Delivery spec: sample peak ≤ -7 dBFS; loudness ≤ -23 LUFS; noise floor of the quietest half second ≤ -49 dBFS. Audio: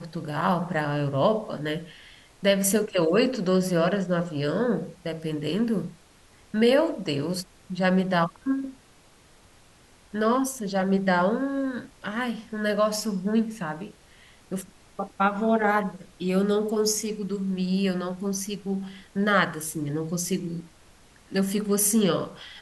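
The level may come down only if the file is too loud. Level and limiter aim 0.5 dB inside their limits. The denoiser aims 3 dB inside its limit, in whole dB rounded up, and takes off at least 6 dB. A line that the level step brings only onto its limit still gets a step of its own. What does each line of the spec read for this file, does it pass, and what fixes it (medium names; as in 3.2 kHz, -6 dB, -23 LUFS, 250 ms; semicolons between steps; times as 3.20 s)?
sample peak -9.0 dBFS: pass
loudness -26.0 LUFS: pass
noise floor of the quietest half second -56 dBFS: pass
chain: none needed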